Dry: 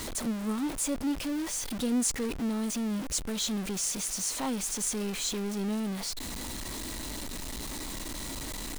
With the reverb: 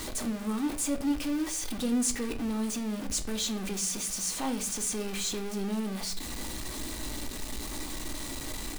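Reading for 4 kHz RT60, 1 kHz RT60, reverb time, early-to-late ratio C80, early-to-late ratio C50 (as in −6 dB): 0.40 s, 0.50 s, 0.55 s, 17.0 dB, 13.0 dB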